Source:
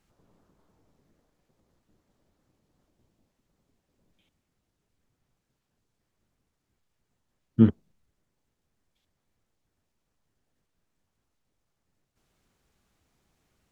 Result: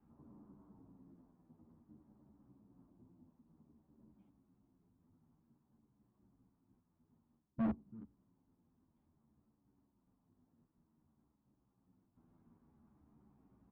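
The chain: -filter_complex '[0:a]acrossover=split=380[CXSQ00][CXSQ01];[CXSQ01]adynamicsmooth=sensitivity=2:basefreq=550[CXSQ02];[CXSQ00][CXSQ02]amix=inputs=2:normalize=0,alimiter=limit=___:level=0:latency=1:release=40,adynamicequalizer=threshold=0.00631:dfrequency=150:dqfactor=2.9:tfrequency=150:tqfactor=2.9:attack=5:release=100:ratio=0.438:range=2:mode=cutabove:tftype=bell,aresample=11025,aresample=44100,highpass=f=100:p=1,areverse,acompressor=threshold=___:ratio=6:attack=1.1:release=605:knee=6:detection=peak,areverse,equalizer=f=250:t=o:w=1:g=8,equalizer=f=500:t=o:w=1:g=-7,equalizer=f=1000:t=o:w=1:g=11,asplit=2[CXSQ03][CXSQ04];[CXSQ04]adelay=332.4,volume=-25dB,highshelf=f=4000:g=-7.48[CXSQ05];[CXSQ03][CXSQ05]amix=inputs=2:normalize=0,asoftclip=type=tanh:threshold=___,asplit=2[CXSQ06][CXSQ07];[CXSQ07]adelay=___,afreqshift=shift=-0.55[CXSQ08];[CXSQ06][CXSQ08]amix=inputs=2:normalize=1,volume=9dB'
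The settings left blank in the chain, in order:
-13.5dB, -32dB, -39dB, 10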